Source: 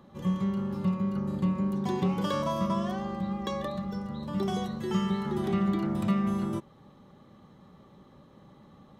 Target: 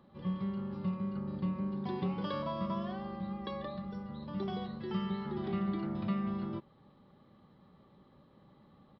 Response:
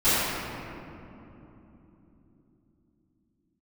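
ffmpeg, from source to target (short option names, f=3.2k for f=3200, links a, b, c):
-af "aresample=11025,aresample=44100,volume=-7dB"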